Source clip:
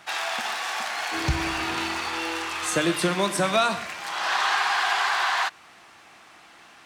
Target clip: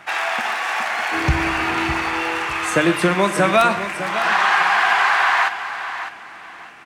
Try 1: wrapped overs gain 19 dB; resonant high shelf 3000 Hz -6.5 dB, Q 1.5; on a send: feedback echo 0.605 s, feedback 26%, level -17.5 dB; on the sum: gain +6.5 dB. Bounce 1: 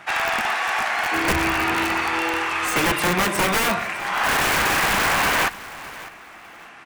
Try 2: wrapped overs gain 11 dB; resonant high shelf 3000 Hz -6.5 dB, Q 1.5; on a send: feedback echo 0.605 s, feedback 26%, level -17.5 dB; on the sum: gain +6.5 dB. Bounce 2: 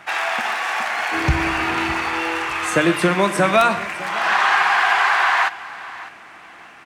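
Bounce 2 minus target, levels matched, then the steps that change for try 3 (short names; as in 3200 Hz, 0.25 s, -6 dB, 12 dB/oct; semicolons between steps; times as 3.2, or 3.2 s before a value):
echo-to-direct -6.5 dB
change: feedback echo 0.605 s, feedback 26%, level -11 dB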